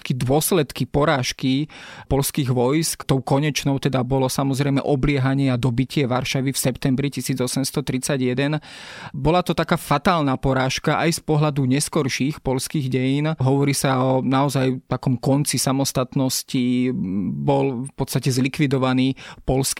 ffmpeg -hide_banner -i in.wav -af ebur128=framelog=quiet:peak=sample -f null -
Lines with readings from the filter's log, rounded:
Integrated loudness:
  I:         -20.8 LUFS
  Threshold: -30.9 LUFS
Loudness range:
  LRA:         1.6 LU
  Threshold: -40.9 LUFS
  LRA low:   -21.8 LUFS
  LRA high:  -20.1 LUFS
Sample peak:
  Peak:       -4.0 dBFS